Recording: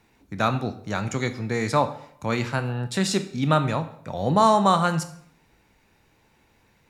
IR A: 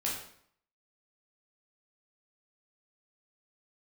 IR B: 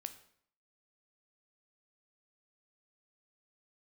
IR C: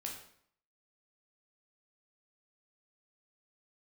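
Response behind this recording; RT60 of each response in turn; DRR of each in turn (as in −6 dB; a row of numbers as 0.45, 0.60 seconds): B; 0.65, 0.60, 0.65 seconds; −5.0, 9.0, −0.5 decibels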